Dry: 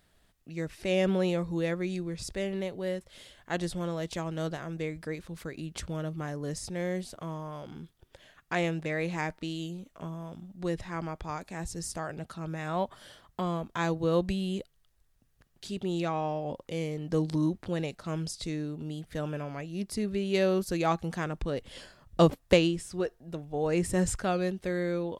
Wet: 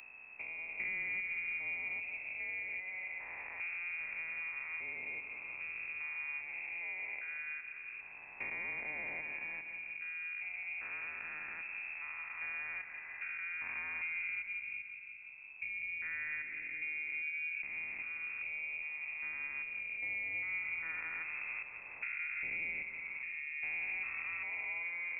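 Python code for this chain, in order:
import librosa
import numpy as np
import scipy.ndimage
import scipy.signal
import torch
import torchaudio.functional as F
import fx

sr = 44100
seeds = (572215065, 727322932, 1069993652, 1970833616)

y = fx.spec_steps(x, sr, hold_ms=400)
y = fx.low_shelf(y, sr, hz=110.0, db=8.0)
y = fx.echo_feedback(y, sr, ms=175, feedback_pct=52, wet_db=-10.5)
y = fx.freq_invert(y, sr, carrier_hz=2600)
y = fx.band_squash(y, sr, depth_pct=70)
y = F.gain(torch.from_numpy(y), -9.0).numpy()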